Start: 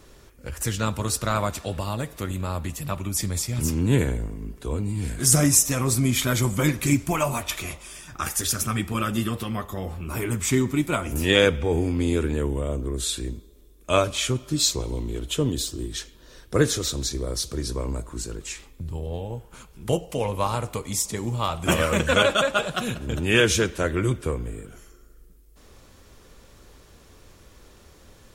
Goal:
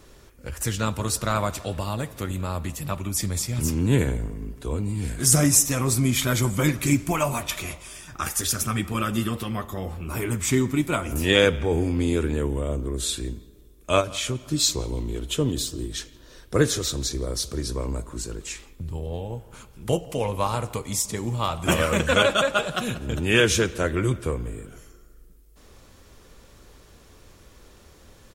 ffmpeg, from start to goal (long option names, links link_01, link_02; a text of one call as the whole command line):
ffmpeg -i in.wav -filter_complex "[0:a]asplit=3[link_01][link_02][link_03];[link_01]afade=type=out:start_time=14:duration=0.02[link_04];[link_02]acompressor=threshold=-26dB:ratio=2,afade=type=in:start_time=14:duration=0.02,afade=type=out:start_time=14.44:duration=0.02[link_05];[link_03]afade=type=in:start_time=14.44:duration=0.02[link_06];[link_04][link_05][link_06]amix=inputs=3:normalize=0,asplit=2[link_07][link_08];[link_08]adelay=168,lowpass=frequency=2300:poles=1,volume=-21dB,asplit=2[link_09][link_10];[link_10]adelay=168,lowpass=frequency=2300:poles=1,volume=0.52,asplit=2[link_11][link_12];[link_12]adelay=168,lowpass=frequency=2300:poles=1,volume=0.52,asplit=2[link_13][link_14];[link_14]adelay=168,lowpass=frequency=2300:poles=1,volume=0.52[link_15];[link_09][link_11][link_13][link_15]amix=inputs=4:normalize=0[link_16];[link_07][link_16]amix=inputs=2:normalize=0" out.wav